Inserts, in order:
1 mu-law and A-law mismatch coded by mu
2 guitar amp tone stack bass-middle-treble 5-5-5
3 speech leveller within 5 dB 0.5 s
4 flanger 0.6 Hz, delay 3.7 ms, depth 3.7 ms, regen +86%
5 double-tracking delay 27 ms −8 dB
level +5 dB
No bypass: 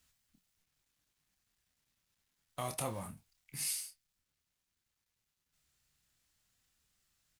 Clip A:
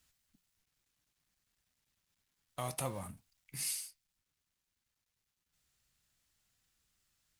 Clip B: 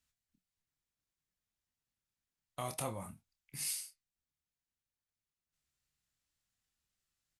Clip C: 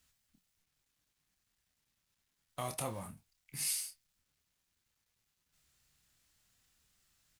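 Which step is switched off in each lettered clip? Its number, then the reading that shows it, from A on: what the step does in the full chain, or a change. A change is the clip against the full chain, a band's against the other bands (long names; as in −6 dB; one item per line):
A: 5, 125 Hz band +2.0 dB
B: 1, distortion level −23 dB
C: 3, 8 kHz band +2.0 dB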